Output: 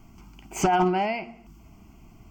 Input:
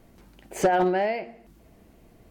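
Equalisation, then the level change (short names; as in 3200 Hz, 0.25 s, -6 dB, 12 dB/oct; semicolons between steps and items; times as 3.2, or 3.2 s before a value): fixed phaser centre 2600 Hz, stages 8; +6.0 dB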